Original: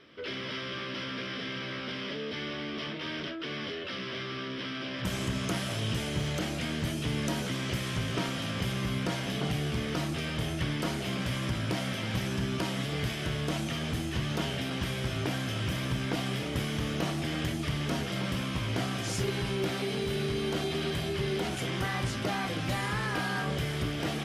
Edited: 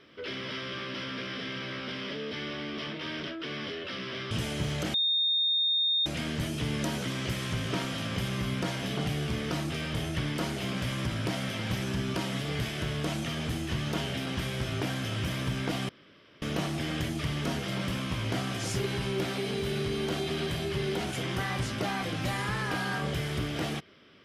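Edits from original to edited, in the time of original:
4.31–5.87 cut
6.5 add tone 3670 Hz -23.5 dBFS 1.12 s
16.33–16.86 room tone

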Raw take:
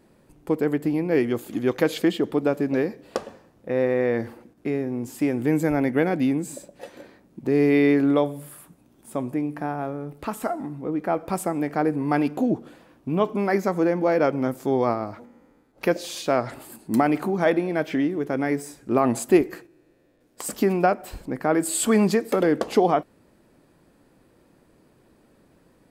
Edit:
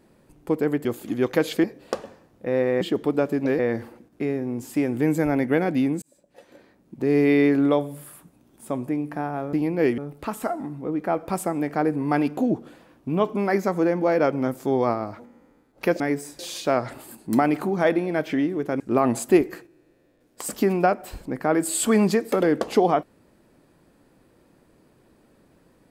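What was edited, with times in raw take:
0.85–1.3 move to 9.98
2.09–2.87 move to 4.04
6.47–7.63 fade in
18.41–18.8 move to 16

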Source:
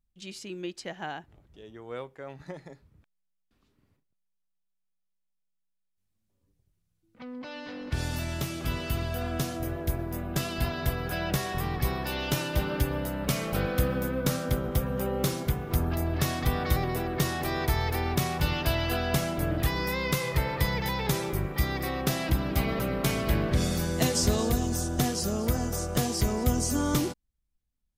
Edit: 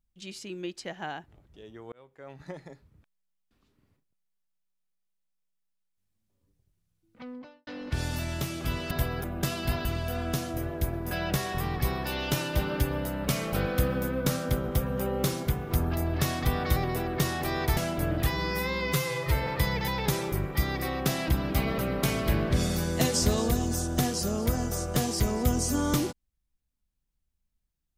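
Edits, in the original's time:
1.92–2.46 fade in
7.23–7.67 studio fade out
8.91–10.17 swap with 10.78–11.11
17.77–19.17 cut
19.7–20.48 stretch 1.5×

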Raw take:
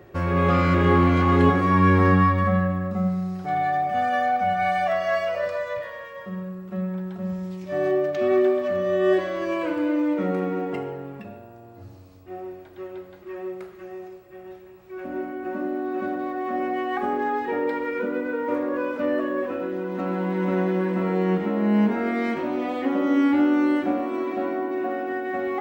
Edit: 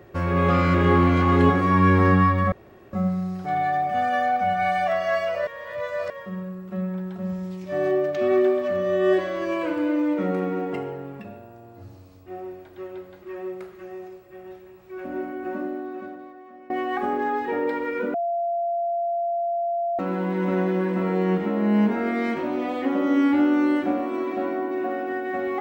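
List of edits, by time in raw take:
2.52–2.93 room tone
5.47–6.1 reverse
15.53–16.7 fade out quadratic, to -20.5 dB
18.14–19.99 bleep 687 Hz -22 dBFS

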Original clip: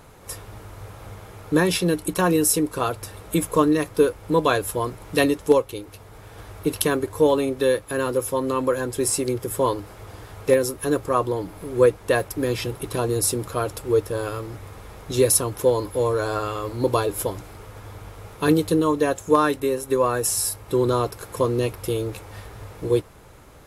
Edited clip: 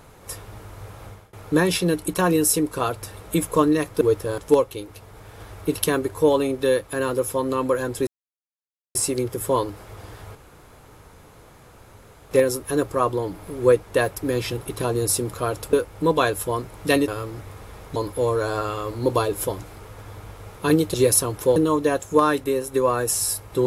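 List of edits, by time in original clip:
1.05–1.33 fade out, to -23.5 dB
4.01–5.36 swap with 13.87–14.24
9.05 insert silence 0.88 s
10.45 insert room tone 1.96 s
15.12–15.74 move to 18.72

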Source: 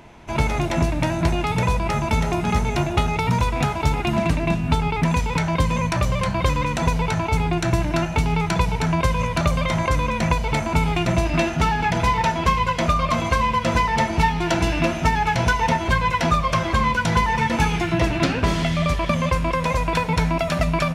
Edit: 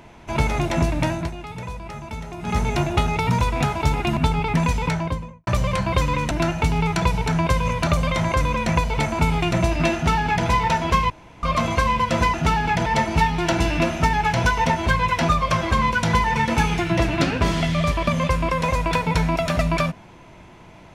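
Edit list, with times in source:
1.08–2.61 dip -12 dB, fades 0.23 s
4.17–4.65 cut
5.28–5.95 studio fade out
6.79–7.85 cut
11.49–12.01 copy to 13.88
12.64–12.97 room tone

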